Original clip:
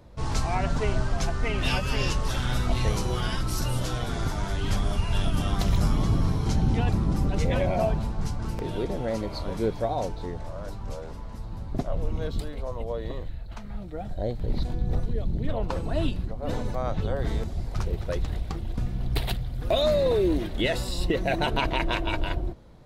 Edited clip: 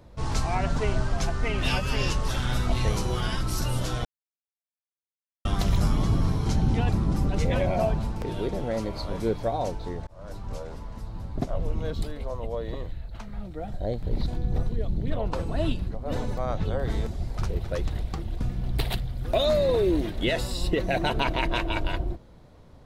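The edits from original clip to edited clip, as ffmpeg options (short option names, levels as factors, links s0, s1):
-filter_complex "[0:a]asplit=5[s0][s1][s2][s3][s4];[s0]atrim=end=4.05,asetpts=PTS-STARTPTS,afade=t=out:st=4.046:d=0.004:c=hsin[s5];[s1]atrim=start=4.05:end=5.45,asetpts=PTS-STARTPTS,volume=0[s6];[s2]atrim=start=5.45:end=8.162,asetpts=PTS-STARTPTS,afade=t=in:d=0.004:c=hsin[s7];[s3]atrim=start=8.528:end=10.44,asetpts=PTS-STARTPTS,afade=t=out:st=1.908:d=0.004:c=hsin[s8];[s4]atrim=start=10.44,asetpts=PTS-STARTPTS,afade=t=in:d=0.45:c=qsin[s9];[s5][s6][s7]concat=n=3:v=0:a=1[s10];[s8][s9]concat=n=2:v=0:a=1[s11];[s10][s11]acrossfade=d=0.004:c1=hsin:c2=hsin"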